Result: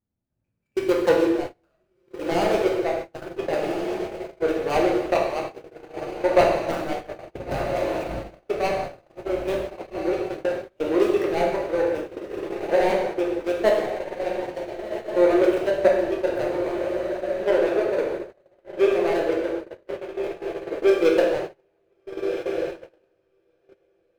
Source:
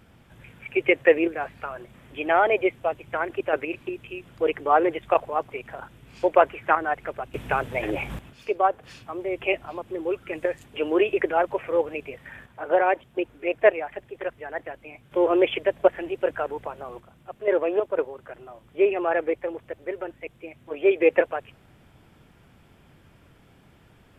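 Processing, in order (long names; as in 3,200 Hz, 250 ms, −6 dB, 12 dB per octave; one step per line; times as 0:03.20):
running median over 41 samples
0:07.66–0:08.07: low-shelf EQ 240 Hz −11.5 dB
feedback delay with all-pass diffusion 1,413 ms, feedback 47%, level −7 dB
dense smooth reverb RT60 0.99 s, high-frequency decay 0.9×, DRR −1.5 dB
noise gate −28 dBFS, range −31 dB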